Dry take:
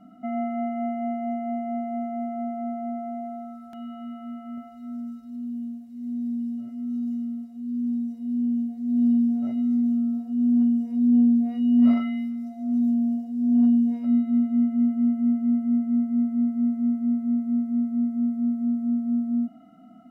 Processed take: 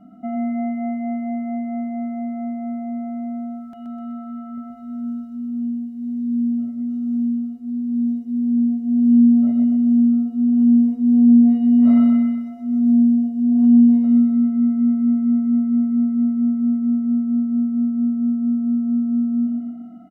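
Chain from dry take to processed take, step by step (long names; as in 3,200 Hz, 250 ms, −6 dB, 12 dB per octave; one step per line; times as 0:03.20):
tilt shelving filter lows +4.5 dB, about 1,100 Hz
repeating echo 126 ms, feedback 52%, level −4 dB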